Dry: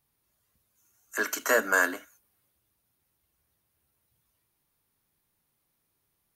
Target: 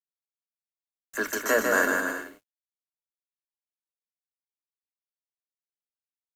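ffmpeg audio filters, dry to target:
ffmpeg -i in.wav -af "aeval=exprs='val(0)*gte(abs(val(0)),0.0075)':channel_layout=same,lowshelf=frequency=300:gain=10,aecho=1:1:150|255|328.5|380|416:0.631|0.398|0.251|0.158|0.1,volume=-1.5dB" out.wav

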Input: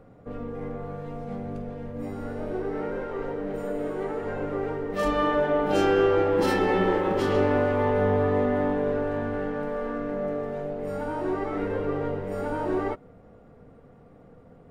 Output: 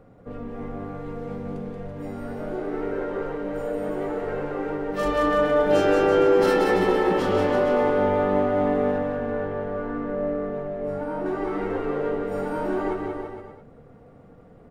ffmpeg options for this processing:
ffmpeg -i in.wav -filter_complex "[0:a]asettb=1/sr,asplit=3[link_01][link_02][link_03];[link_01]atrim=end=8.984[link_04];[link_02]atrim=start=8.98:end=11.26,asetpts=PTS-STARTPTS,afade=type=in:duration=0.004:curve=qsin,afade=type=out:start_time=2.276:duration=0.004:curve=qsin,highshelf=frequency=3200:gain=-12[link_05];[link_03]atrim=start=11.256[link_06];[link_04][link_05]acrossfade=duration=0.004:curve1=hsin:curve2=qsin[link_07];[link_07][link_06]acrossfade=duration=0.004:curve1=qsin:curve2=hsin,aecho=1:1:180|333|463|573.6|667.6:0.631|0.398|0.251|0.158|0.1" out.wav

